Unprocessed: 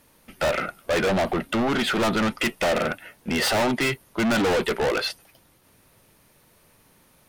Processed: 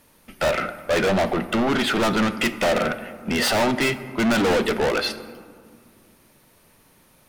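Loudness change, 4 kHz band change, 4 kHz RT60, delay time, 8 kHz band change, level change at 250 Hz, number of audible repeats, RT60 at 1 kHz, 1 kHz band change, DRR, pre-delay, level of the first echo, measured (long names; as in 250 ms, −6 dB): +2.0 dB, +1.5 dB, 0.90 s, no echo audible, +1.5 dB, +2.5 dB, no echo audible, 2.0 s, +2.0 dB, 11.0 dB, 3 ms, no echo audible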